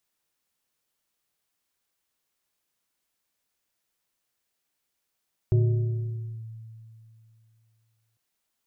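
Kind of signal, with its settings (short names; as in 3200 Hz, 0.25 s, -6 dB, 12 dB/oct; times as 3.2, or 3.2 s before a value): FM tone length 2.65 s, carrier 112 Hz, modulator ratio 2.28, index 0.6, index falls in 0.95 s linear, decay 2.76 s, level -16 dB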